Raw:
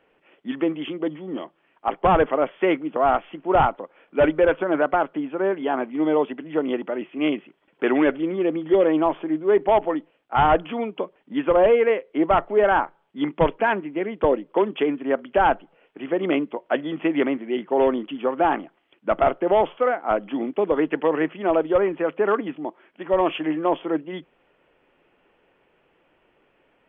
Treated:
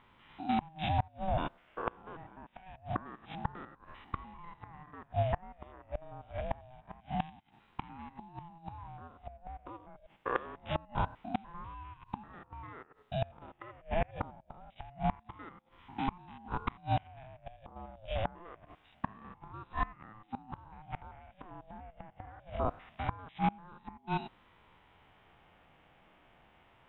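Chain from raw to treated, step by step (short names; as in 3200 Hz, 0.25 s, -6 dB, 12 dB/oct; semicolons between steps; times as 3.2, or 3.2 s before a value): stepped spectrum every 0.1 s; flipped gate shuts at -21 dBFS, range -29 dB; ring modulator with a swept carrier 430 Hz, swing 25%, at 0.25 Hz; gain +4.5 dB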